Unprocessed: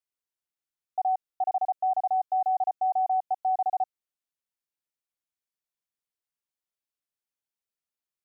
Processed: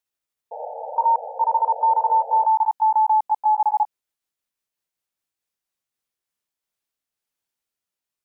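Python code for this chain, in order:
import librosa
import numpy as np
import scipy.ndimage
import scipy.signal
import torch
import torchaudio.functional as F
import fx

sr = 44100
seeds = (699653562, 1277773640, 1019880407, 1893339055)

y = fx.pitch_glide(x, sr, semitones=4.0, runs='ending unshifted')
y = fx.spec_paint(y, sr, seeds[0], shape='noise', start_s=0.51, length_s=1.95, low_hz=450.0, high_hz=920.0, level_db=-41.0)
y = F.gain(torch.from_numpy(y), 8.0).numpy()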